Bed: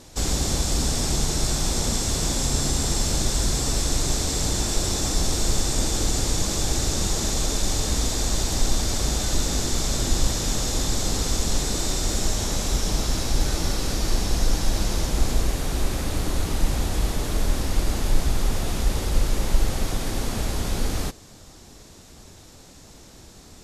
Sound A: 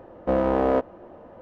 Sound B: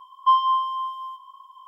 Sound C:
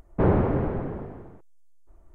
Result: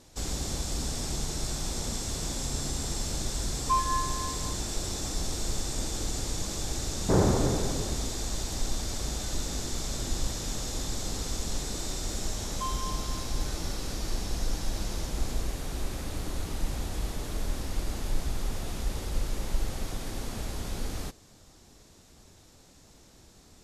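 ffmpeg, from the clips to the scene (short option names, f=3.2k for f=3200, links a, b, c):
-filter_complex "[2:a]asplit=2[a][b];[0:a]volume=-9dB[c];[a]afwtdn=0.0501[d];[b]highpass=f=1.4k:p=1[e];[d]atrim=end=1.67,asetpts=PTS-STARTPTS,volume=-9dB,afade=t=in:d=0.004:c=hsin,afade=t=out:st=1.666:d=0.004:c=hsin,adelay=3430[f];[3:a]atrim=end=2.14,asetpts=PTS-STARTPTS,volume=-2.5dB,afade=t=in:d=0.004:c=hsin,afade=t=out:st=2.136:d=0.004:c=hsin,adelay=304290S[g];[e]atrim=end=1.67,asetpts=PTS-STARTPTS,volume=-14dB,afade=t=in:d=0.004:c=hsin,afade=t=out:st=1.666:d=0.004:c=hsin,adelay=12340[h];[c][f][g][h]amix=inputs=4:normalize=0"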